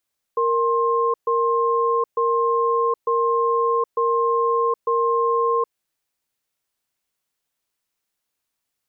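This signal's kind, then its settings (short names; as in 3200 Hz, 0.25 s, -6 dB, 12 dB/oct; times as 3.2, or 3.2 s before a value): cadence 465 Hz, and 1060 Hz, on 0.77 s, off 0.13 s, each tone -19.5 dBFS 5.32 s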